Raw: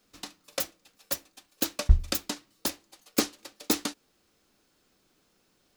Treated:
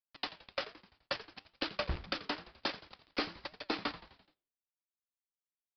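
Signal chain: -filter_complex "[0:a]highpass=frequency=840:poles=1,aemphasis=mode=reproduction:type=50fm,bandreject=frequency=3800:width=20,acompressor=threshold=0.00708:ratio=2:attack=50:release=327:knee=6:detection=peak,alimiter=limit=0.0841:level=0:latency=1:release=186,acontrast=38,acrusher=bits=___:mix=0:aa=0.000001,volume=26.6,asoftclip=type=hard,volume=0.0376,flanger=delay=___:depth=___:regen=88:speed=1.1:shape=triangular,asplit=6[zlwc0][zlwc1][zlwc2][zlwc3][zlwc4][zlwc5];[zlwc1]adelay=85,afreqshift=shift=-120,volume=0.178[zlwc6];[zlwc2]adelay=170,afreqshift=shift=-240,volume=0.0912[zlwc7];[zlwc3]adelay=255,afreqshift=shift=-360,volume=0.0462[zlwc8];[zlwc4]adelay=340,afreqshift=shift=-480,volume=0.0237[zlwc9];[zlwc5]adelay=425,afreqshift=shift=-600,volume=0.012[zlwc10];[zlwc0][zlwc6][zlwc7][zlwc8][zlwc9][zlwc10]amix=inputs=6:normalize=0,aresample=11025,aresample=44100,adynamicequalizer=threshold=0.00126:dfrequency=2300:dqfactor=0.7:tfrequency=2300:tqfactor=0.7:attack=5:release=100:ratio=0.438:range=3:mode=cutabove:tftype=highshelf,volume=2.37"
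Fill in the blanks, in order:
6, 4.7, 6.2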